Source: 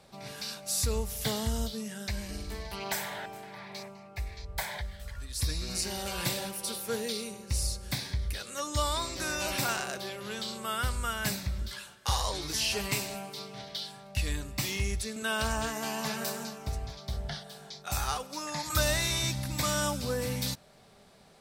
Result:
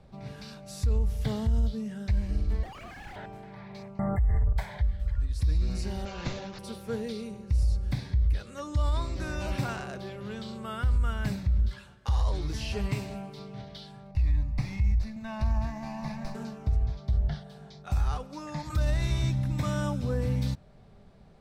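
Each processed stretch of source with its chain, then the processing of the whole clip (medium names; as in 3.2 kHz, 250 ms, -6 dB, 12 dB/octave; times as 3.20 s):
2.63–3.16 s: formants replaced by sine waves + peaking EQ 590 Hz -11 dB 1.4 oct + Schmitt trigger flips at -52 dBFS
3.99–4.53 s: brick-wall FIR band-stop 2.1–7.3 kHz + peaking EQ 390 Hz -5.5 dB 0.25 oct + level flattener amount 100%
6.05–6.59 s: high-pass 270 Hz 6 dB/octave + careless resampling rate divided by 3×, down none, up filtered
14.11–16.35 s: static phaser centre 2.1 kHz, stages 8 + sliding maximum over 3 samples
19.29–20.13 s: peaking EQ 61 Hz -14.5 dB 0.31 oct + band-stop 4.6 kHz, Q 9.3
whole clip: RIAA curve playback; peak limiter -15 dBFS; trim -3.5 dB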